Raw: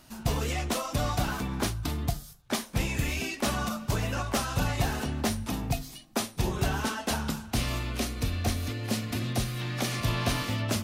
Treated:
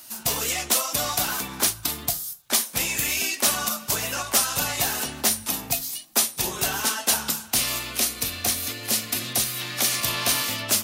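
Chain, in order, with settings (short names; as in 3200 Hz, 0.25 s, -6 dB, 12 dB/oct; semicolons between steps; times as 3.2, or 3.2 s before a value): RIAA curve recording; gain +3 dB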